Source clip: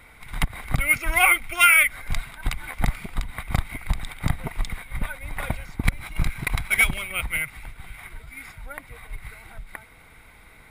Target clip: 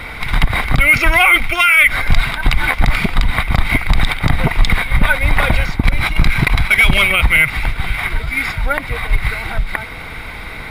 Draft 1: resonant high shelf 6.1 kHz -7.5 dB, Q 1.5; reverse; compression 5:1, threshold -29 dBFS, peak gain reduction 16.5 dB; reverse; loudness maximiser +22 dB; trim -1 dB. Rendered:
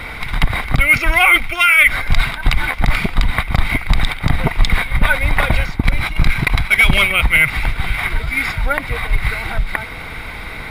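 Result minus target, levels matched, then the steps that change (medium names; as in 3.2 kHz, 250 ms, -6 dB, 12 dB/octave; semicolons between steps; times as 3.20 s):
compression: peak gain reduction +5 dB
change: compression 5:1, threshold -23 dBFS, peak gain reduction 12 dB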